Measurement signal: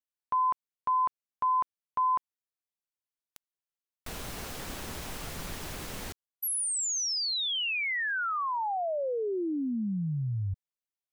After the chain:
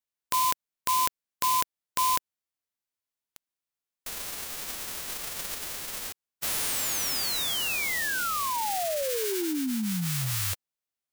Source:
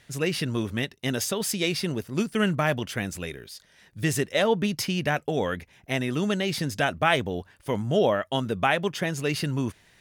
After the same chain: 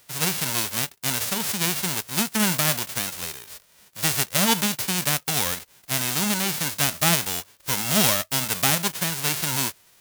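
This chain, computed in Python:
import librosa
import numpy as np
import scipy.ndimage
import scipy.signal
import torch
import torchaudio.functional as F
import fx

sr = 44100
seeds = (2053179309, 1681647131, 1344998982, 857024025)

y = fx.envelope_flatten(x, sr, power=0.1)
y = F.gain(torch.from_numpy(y), 2.0).numpy()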